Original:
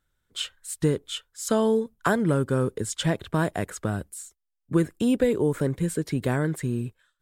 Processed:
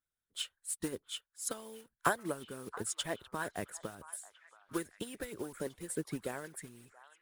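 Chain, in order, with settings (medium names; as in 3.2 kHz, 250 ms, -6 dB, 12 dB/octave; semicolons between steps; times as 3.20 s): block-companded coder 5-bit; bass shelf 400 Hz -4.5 dB; harmonic-percussive split harmonic -15 dB; peaking EQ 10 kHz +9.5 dB 0.31 oct; repeats whose band climbs or falls 677 ms, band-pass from 1.1 kHz, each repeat 0.7 oct, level -9 dB; upward expansion 1.5:1, over -38 dBFS; trim -3.5 dB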